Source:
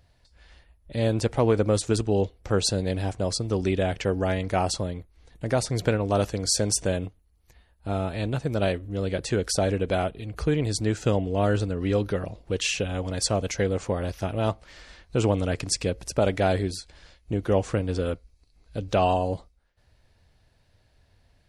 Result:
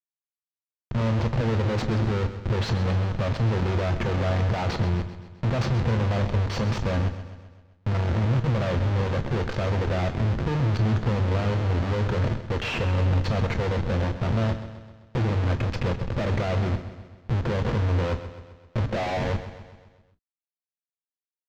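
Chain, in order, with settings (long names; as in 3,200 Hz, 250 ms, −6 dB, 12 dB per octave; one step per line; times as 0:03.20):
stylus tracing distortion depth 0.075 ms
0:18.83–0:19.29: high-pass filter 150 Hz → 600 Hz 12 dB per octave
low-pass that shuts in the quiet parts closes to 350 Hz, open at −18.5 dBFS
0:09.11–0:09.82: parametric band 880 Hz −13.5 dB 0.52 octaves
in parallel at +2 dB: brickwall limiter −16.5 dBFS, peak gain reduction 7 dB
on the sum: downward compressor 4 to 1, threshold −21 dBFS, peak gain reduction 8.5 dB
comparator with hysteresis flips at −32.5 dBFS
high-frequency loss of the air 180 metres
repeating echo 130 ms, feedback 55%, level −12 dB
on a send at −9.5 dB: convolution reverb, pre-delay 3 ms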